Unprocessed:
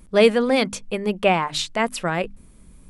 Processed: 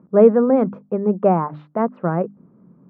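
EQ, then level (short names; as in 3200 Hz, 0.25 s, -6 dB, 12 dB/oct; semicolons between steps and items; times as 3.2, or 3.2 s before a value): Chebyshev band-pass 150–1300 Hz, order 3; tilt shelf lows +4.5 dB, about 670 Hz; +2.5 dB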